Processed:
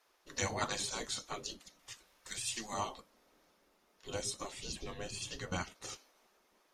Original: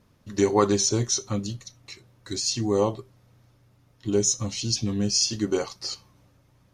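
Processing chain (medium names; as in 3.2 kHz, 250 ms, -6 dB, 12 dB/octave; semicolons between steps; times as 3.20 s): 1.79–2.74 s: FFT filter 130 Hz 0 dB, 190 Hz -17 dB, 740 Hz -1 dB, 2.6 kHz +5 dB; spectral gate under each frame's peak -15 dB weak; 4.59–5.82 s: tone controls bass +6 dB, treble -5 dB; trim -2 dB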